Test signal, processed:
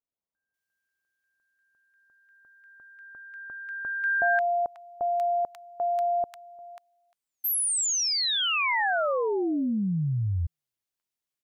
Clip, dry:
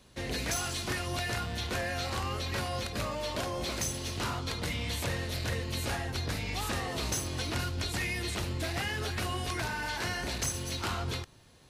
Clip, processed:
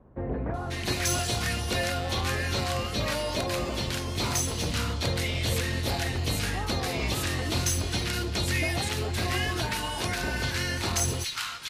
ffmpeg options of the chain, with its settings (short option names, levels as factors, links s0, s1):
-filter_complex "[0:a]acrossover=split=1200[s0][s1];[s1]adelay=540[s2];[s0][s2]amix=inputs=2:normalize=0,volume=1.88"